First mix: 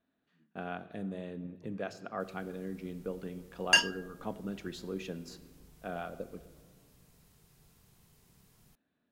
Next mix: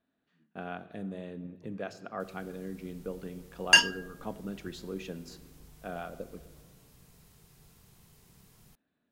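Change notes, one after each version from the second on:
background +4.5 dB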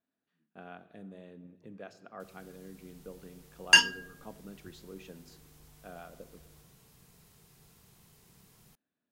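speech -8.0 dB; master: add low shelf 80 Hz -8 dB

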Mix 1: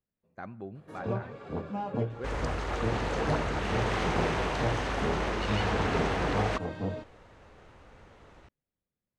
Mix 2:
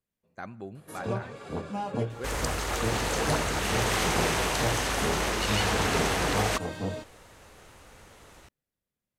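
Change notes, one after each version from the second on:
master: remove tape spacing loss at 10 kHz 23 dB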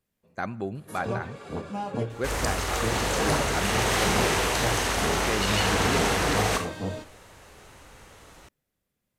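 speech +8.5 dB; reverb: on, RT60 0.40 s

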